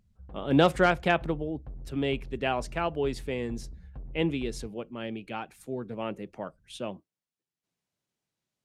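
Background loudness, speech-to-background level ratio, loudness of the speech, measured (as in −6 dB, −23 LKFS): −46.5 LKFS, 16.0 dB, −30.5 LKFS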